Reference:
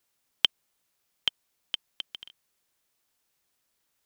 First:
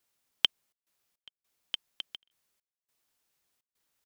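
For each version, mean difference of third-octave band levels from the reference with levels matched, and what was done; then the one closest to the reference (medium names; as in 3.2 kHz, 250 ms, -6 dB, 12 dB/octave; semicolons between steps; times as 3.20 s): 5.0 dB: trance gate "xxxxx.xx.." 104 bpm -24 dB; trim -2.5 dB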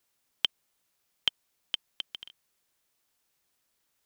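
2.5 dB: peak limiter -7.5 dBFS, peak gain reduction 5 dB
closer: second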